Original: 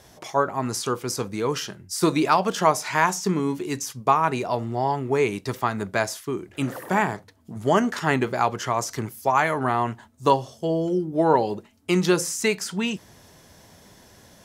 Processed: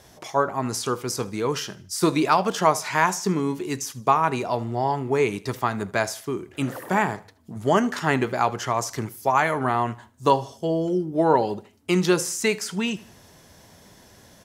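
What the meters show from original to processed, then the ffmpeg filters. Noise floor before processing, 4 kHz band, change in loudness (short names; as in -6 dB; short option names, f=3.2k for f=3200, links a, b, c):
-53 dBFS, 0.0 dB, 0.0 dB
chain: -af "aecho=1:1:77|154|231:0.0944|0.0349|0.0129"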